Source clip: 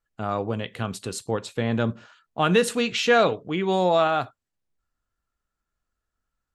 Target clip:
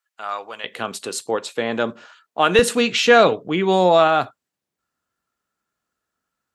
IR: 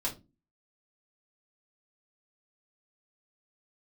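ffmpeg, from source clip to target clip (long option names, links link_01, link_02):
-af "asetnsamples=nb_out_samples=441:pad=0,asendcmd='0.64 highpass f 350;2.59 highpass f 160',highpass=1100,volume=6dB"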